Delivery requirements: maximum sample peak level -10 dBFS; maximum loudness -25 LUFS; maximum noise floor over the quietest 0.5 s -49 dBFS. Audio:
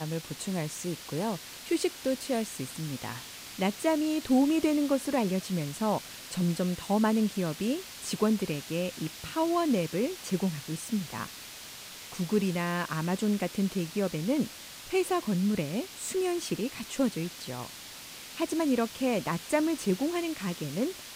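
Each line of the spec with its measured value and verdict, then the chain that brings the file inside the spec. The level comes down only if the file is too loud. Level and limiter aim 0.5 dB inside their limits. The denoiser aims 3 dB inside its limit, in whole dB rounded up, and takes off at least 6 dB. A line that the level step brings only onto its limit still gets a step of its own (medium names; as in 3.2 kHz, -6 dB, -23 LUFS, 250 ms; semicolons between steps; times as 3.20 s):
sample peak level -12.0 dBFS: pass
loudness -30.5 LUFS: pass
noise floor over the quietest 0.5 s -45 dBFS: fail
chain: noise reduction 7 dB, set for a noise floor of -45 dBFS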